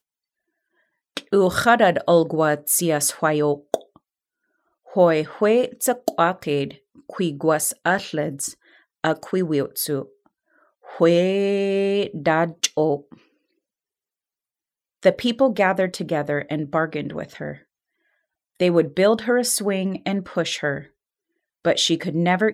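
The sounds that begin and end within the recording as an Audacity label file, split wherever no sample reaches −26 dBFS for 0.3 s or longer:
1.170000	3.760000	sound
4.960000	6.710000	sound
7.100000	8.490000	sound
9.040000	10.020000	sound
10.960000	12.960000	sound
15.030000	17.520000	sound
18.600000	20.790000	sound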